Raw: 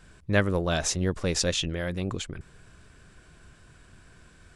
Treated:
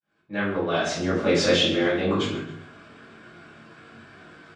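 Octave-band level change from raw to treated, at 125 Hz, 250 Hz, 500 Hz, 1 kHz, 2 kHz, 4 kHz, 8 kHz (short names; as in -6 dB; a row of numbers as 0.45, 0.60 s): -2.5, +5.5, +6.5, +6.0, +4.0, +5.5, -5.0 dB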